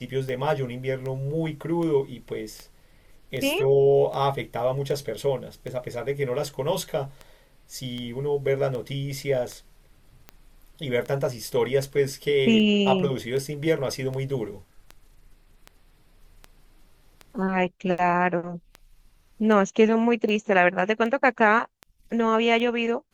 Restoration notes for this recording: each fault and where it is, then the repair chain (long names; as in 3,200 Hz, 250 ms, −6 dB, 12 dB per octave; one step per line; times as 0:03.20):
scratch tick 78 rpm −22 dBFS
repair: click removal